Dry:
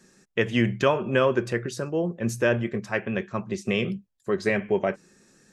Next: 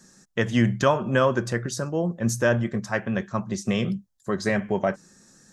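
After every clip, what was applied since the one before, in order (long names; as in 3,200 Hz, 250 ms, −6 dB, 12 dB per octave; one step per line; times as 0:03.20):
graphic EQ with 15 bands 400 Hz −8 dB, 2,500 Hz −10 dB, 6,300 Hz +4 dB
level +4 dB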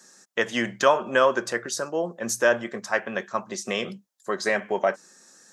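high-pass filter 440 Hz 12 dB per octave
level +3 dB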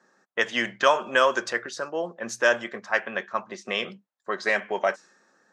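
low-pass that shuts in the quiet parts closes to 1,200 Hz, open at −15.5 dBFS
spectral tilt +2.5 dB per octave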